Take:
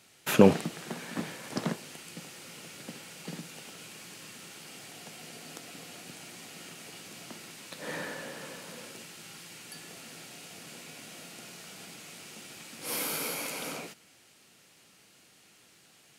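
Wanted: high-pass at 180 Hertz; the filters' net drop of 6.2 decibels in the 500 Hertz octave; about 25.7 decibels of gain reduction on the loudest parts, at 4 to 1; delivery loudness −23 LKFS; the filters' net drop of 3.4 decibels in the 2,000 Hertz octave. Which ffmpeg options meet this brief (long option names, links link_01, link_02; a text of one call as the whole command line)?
ffmpeg -i in.wav -af "highpass=180,equalizer=frequency=500:width_type=o:gain=-7,equalizer=frequency=2000:width_type=o:gain=-4,acompressor=threshold=-49dB:ratio=4,volume=27dB" out.wav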